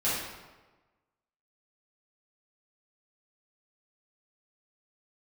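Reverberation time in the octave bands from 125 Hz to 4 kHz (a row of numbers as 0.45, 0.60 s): 1.3, 1.3, 1.3, 1.2, 1.0, 0.85 s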